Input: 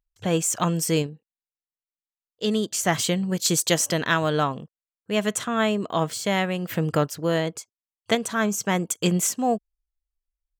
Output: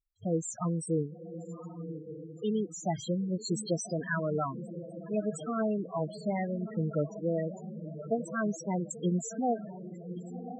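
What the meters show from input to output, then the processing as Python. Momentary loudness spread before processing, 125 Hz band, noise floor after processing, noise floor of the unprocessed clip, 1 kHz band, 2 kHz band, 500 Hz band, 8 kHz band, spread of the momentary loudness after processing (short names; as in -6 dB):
5 LU, -6.5 dB, -47 dBFS, under -85 dBFS, -10.0 dB, -13.0 dB, -7.0 dB, -15.5 dB, 11 LU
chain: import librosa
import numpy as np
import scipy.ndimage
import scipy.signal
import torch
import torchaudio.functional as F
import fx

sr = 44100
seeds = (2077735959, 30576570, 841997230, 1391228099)

y = fx.echo_diffused(x, sr, ms=1087, feedback_pct=52, wet_db=-9)
y = fx.spec_topn(y, sr, count=8)
y = y * 10.0 ** (-6.5 / 20.0)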